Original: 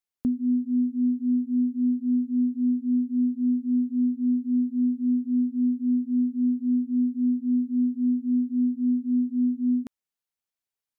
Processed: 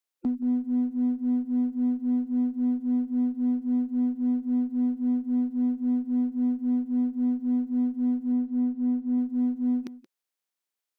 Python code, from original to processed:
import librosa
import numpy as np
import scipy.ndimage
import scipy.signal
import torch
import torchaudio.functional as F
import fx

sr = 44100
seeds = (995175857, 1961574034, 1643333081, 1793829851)

p1 = fx.spec_quant(x, sr, step_db=30)
p2 = scipy.signal.sosfilt(scipy.signal.butter(2, 250.0, 'highpass', fs=sr, output='sos'), p1)
p3 = fx.clip_asym(p2, sr, top_db=-32.5, bottom_db=-25.5)
p4 = p2 + F.gain(torch.from_numpy(p3), -7.5).numpy()
p5 = fx.air_absorb(p4, sr, metres=190.0, at=(8.32, 9.18))
y = p5 + fx.echo_single(p5, sr, ms=176, db=-17.0, dry=0)